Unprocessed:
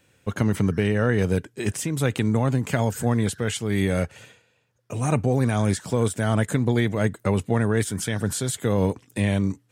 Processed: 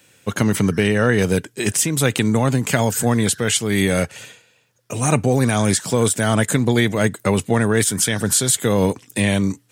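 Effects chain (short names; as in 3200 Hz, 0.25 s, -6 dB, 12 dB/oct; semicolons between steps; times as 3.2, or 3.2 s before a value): HPF 110 Hz; high shelf 2600 Hz +8.5 dB; gain +5 dB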